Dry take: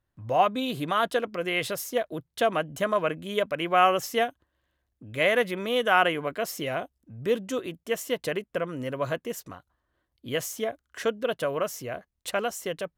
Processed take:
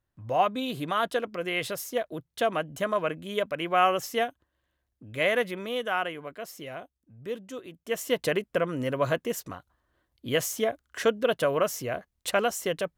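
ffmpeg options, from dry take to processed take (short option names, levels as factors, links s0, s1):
-af "volume=3.16,afade=t=out:st=5.34:d=0.73:silence=0.446684,afade=t=in:st=7.71:d=0.48:silence=0.251189"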